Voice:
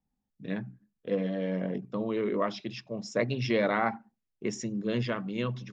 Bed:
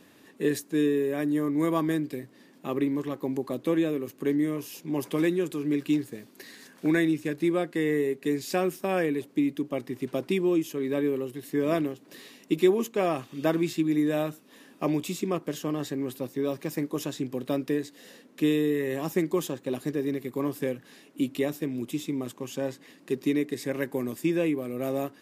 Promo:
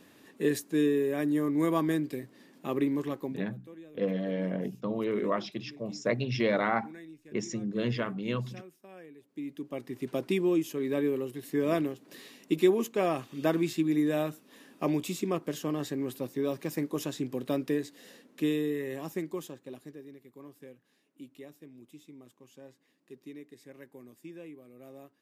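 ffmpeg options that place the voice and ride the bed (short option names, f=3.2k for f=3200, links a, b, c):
-filter_complex "[0:a]adelay=2900,volume=-0.5dB[a];[1:a]volume=20dB,afade=t=out:st=3.13:d=0.35:silence=0.0794328,afade=t=in:st=9.21:d=0.99:silence=0.0841395,afade=t=out:st=17.82:d=2.26:silence=0.125893[b];[a][b]amix=inputs=2:normalize=0"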